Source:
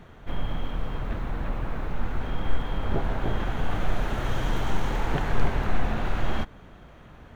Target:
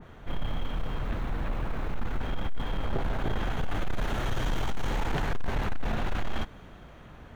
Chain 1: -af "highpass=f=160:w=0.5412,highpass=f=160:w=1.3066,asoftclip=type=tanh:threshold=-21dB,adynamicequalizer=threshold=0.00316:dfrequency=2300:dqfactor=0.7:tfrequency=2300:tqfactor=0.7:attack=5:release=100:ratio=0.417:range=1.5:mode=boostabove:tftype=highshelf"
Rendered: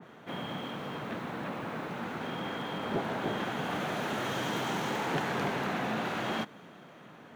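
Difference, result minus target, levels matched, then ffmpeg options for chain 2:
125 Hz band -6.5 dB
-af "asoftclip=type=tanh:threshold=-21dB,adynamicequalizer=threshold=0.00316:dfrequency=2300:dqfactor=0.7:tfrequency=2300:tqfactor=0.7:attack=5:release=100:ratio=0.417:range=1.5:mode=boostabove:tftype=highshelf"

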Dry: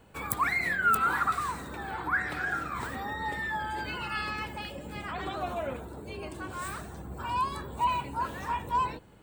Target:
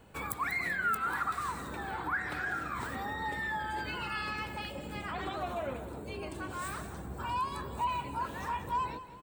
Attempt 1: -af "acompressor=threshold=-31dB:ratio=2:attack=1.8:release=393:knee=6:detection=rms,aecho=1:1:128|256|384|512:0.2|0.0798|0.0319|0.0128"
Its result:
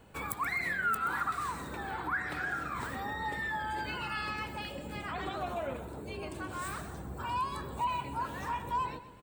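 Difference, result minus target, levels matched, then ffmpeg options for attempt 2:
echo 63 ms early
-af "acompressor=threshold=-31dB:ratio=2:attack=1.8:release=393:knee=6:detection=rms,aecho=1:1:191|382|573|764:0.2|0.0798|0.0319|0.0128"

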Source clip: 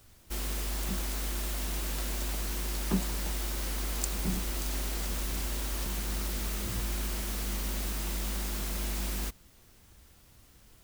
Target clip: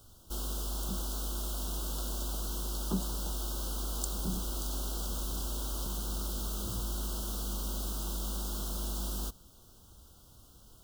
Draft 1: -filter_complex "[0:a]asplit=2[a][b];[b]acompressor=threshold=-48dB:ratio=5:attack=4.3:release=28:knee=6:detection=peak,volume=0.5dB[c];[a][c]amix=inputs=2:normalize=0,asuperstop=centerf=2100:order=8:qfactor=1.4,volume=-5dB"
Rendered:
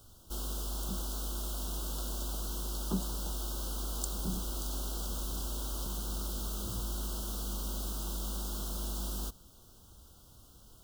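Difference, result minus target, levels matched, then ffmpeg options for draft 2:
compressor: peak gain reduction +5 dB
-filter_complex "[0:a]asplit=2[a][b];[b]acompressor=threshold=-41.5dB:ratio=5:attack=4.3:release=28:knee=6:detection=peak,volume=0.5dB[c];[a][c]amix=inputs=2:normalize=0,asuperstop=centerf=2100:order=8:qfactor=1.4,volume=-5dB"

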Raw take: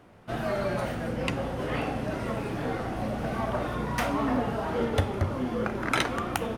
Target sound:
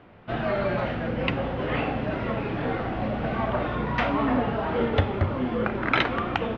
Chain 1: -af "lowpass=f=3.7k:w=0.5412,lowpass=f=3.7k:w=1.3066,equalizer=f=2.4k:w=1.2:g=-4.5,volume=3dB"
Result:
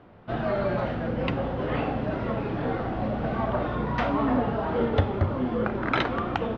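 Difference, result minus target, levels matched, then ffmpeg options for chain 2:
2000 Hz band -3.5 dB
-af "lowpass=f=3.7k:w=0.5412,lowpass=f=3.7k:w=1.3066,equalizer=f=2.4k:w=1.2:g=2,volume=3dB"

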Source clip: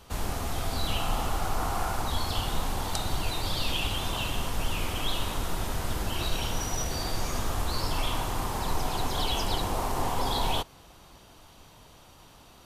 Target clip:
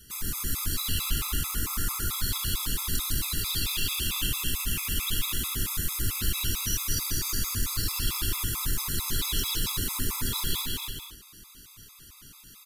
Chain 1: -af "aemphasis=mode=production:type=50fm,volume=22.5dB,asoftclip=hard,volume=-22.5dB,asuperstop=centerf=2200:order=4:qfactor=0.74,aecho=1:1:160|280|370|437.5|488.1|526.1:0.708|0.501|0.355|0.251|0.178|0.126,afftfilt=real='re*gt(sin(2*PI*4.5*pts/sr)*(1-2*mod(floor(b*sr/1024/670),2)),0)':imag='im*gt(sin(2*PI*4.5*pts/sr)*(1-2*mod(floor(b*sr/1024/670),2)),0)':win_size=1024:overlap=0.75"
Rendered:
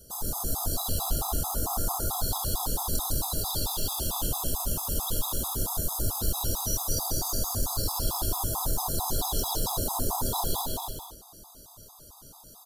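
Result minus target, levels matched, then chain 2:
2000 Hz band -14.5 dB
-af "aemphasis=mode=production:type=50fm,volume=22.5dB,asoftclip=hard,volume=-22.5dB,asuperstop=centerf=670:order=4:qfactor=0.74,aecho=1:1:160|280|370|437.5|488.1|526.1:0.708|0.501|0.355|0.251|0.178|0.126,afftfilt=real='re*gt(sin(2*PI*4.5*pts/sr)*(1-2*mod(floor(b*sr/1024/670),2)),0)':imag='im*gt(sin(2*PI*4.5*pts/sr)*(1-2*mod(floor(b*sr/1024/670),2)),0)':win_size=1024:overlap=0.75"

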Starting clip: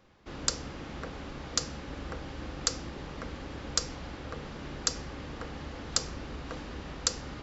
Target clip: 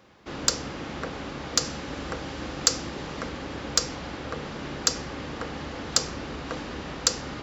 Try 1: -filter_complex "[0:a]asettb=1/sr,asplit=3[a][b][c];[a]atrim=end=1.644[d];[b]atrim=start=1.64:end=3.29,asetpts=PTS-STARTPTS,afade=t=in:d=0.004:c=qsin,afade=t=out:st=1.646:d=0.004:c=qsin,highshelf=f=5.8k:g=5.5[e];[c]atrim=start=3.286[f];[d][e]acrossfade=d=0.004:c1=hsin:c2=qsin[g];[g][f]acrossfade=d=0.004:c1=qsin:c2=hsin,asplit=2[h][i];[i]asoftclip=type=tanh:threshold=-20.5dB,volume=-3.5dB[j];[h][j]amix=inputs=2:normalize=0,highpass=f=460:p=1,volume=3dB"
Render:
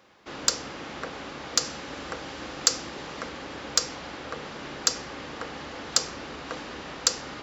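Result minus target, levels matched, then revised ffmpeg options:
125 Hz band -8.0 dB
-filter_complex "[0:a]asettb=1/sr,asplit=3[a][b][c];[a]atrim=end=1.644[d];[b]atrim=start=1.64:end=3.29,asetpts=PTS-STARTPTS,afade=t=in:d=0.004:c=qsin,afade=t=out:st=1.646:d=0.004:c=qsin,highshelf=f=5.8k:g=5.5[e];[c]atrim=start=3.286[f];[d][e]acrossfade=d=0.004:c1=hsin:c2=qsin[g];[g][f]acrossfade=d=0.004:c1=qsin:c2=hsin,asplit=2[h][i];[i]asoftclip=type=tanh:threshold=-20.5dB,volume=-3.5dB[j];[h][j]amix=inputs=2:normalize=0,highpass=f=130:p=1,volume=3dB"

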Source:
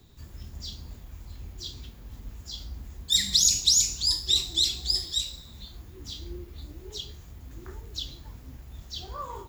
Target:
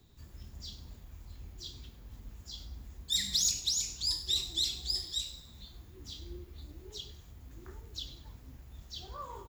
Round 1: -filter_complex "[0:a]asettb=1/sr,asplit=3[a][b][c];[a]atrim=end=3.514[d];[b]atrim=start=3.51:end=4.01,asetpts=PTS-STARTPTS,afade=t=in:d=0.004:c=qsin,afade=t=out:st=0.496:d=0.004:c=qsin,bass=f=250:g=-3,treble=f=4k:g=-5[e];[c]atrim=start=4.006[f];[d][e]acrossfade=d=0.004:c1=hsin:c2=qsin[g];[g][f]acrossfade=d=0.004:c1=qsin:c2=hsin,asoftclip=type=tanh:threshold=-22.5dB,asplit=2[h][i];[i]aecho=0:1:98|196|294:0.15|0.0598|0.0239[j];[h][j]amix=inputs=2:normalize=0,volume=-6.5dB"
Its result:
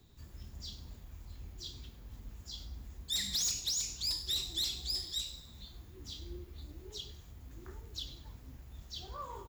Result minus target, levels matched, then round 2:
soft clip: distortion +10 dB
-filter_complex "[0:a]asettb=1/sr,asplit=3[a][b][c];[a]atrim=end=3.514[d];[b]atrim=start=3.51:end=4.01,asetpts=PTS-STARTPTS,afade=t=in:d=0.004:c=qsin,afade=t=out:st=0.496:d=0.004:c=qsin,bass=f=250:g=-3,treble=f=4k:g=-5[e];[c]atrim=start=4.006[f];[d][e]acrossfade=d=0.004:c1=hsin:c2=qsin[g];[g][f]acrossfade=d=0.004:c1=qsin:c2=hsin,asoftclip=type=tanh:threshold=-13.5dB,asplit=2[h][i];[i]aecho=0:1:98|196|294:0.15|0.0598|0.0239[j];[h][j]amix=inputs=2:normalize=0,volume=-6.5dB"

